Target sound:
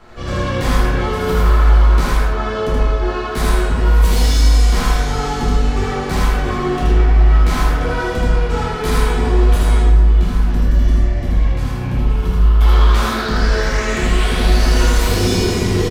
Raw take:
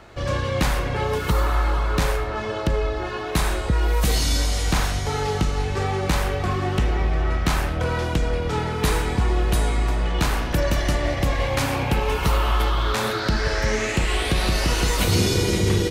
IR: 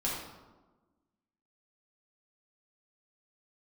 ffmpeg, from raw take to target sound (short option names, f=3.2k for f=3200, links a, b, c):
-filter_complex "[0:a]asettb=1/sr,asplit=3[a][b][c];[a]atrim=end=9.804[d];[b]atrim=start=9.8:end=12.61,asetpts=PTS-STARTPTS,afade=t=in:d=0.004:c=qsin,afade=t=out:st=2.806:d=0.004:c=qsin,acrossover=split=230[e][f];[f]acompressor=threshold=-36dB:ratio=5[g];[e][g]amix=inputs=2:normalize=0[h];[c]atrim=start=12.606[i];[d][h]acrossfade=d=0.004:c1=hsin:c2=qsin[j];[j][i]acrossfade=d=0.004:c1=qsin:c2=hsin,asoftclip=type=hard:threshold=-18dB,aecho=1:1:76|80:0.531|0.596[k];[1:a]atrim=start_sample=2205,asetrate=61740,aresample=44100[l];[k][l]afir=irnorm=-1:irlink=0"